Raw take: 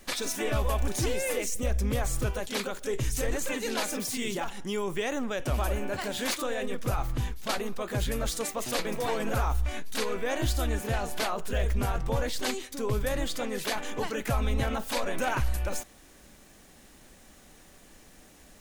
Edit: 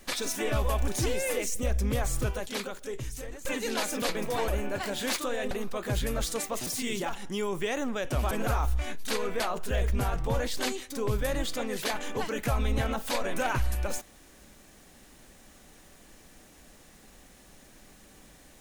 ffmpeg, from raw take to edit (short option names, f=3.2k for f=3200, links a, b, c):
-filter_complex "[0:a]asplit=8[a][b][c][d][e][f][g][h];[a]atrim=end=3.45,asetpts=PTS-STARTPTS,afade=t=out:st=2.21:d=1.24:silence=0.16788[i];[b]atrim=start=3.45:end=4.022,asetpts=PTS-STARTPTS,afade=t=in:d=0.004:c=hsin:silence=0.16788[j];[c]atrim=start=8.718:end=9.182[k];[d]atrim=start=5.658:end=6.692[l];[e]atrim=start=7.558:end=8.722[m];[f]atrim=start=4.018:end=5.662[n];[g]atrim=start=9.178:end=10.272[o];[h]atrim=start=11.218[p];[i][j]concat=n=2:v=0:a=1[q];[q][k]acrossfade=d=0.004:c1=hsin:c2=hsin[r];[r][l]acrossfade=d=0.004:c1=hsin:c2=hsin[s];[s][m]acrossfade=d=0.004:c1=hsin:c2=hsin[t];[t][n]acrossfade=d=0.004:c1=hsin:c2=hsin[u];[u][o]acrossfade=d=0.004:c1=hsin:c2=hsin[v];[v][p]acrossfade=d=0.004:c1=hsin:c2=hsin"